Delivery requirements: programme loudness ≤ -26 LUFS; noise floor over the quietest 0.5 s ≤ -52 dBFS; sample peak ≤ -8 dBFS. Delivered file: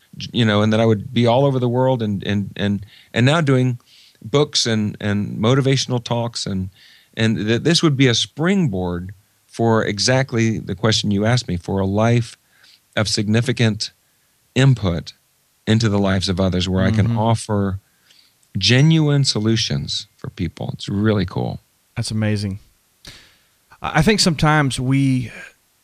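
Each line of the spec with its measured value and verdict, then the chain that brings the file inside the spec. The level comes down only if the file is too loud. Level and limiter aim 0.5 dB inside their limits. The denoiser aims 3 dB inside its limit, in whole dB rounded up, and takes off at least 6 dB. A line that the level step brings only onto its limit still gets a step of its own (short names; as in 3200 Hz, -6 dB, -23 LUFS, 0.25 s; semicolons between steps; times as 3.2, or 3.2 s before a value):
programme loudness -18.5 LUFS: fail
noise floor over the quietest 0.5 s -61 dBFS: OK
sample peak -2.5 dBFS: fail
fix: gain -8 dB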